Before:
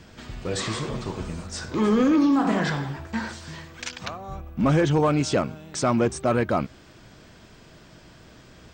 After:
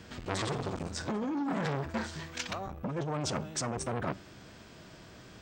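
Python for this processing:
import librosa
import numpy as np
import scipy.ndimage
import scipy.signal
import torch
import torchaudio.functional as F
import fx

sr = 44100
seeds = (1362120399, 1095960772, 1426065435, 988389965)

y = fx.highpass(x, sr, hz=60.0, slope=6)
y = fx.dynamic_eq(y, sr, hz=120.0, q=0.98, threshold_db=-39.0, ratio=4.0, max_db=6)
y = fx.over_compress(y, sr, threshold_db=-24.0, ratio=-1.0)
y = np.clip(y, -10.0 ** (-15.0 / 20.0), 10.0 ** (-15.0 / 20.0))
y = fx.comb_fb(y, sr, f0_hz=96.0, decay_s=0.46, harmonics='all', damping=0.0, mix_pct=40)
y = fx.stretch_vocoder(y, sr, factor=0.62)
y = fx.transformer_sat(y, sr, knee_hz=1300.0)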